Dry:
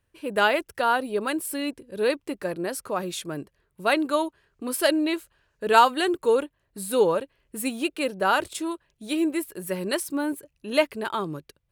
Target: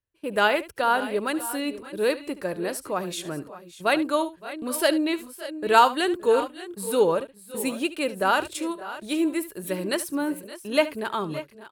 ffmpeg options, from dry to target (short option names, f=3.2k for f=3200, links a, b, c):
-af "agate=range=-17dB:threshold=-42dB:ratio=16:detection=peak,aecho=1:1:73|567|596:0.158|0.106|0.168"